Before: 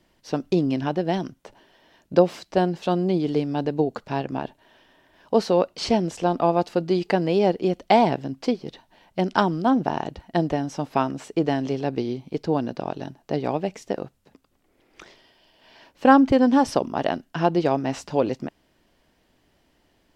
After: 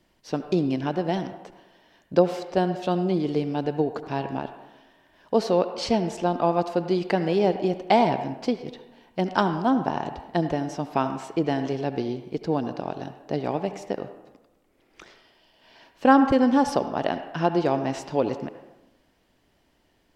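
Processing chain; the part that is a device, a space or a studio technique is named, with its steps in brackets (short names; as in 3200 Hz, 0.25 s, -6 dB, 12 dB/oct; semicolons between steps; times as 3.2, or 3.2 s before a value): filtered reverb send (on a send: HPF 520 Hz 6 dB/oct + LPF 3200 Hz 12 dB/oct + reverb RT60 1.0 s, pre-delay 66 ms, DRR 9 dB); on the sum: gain -2 dB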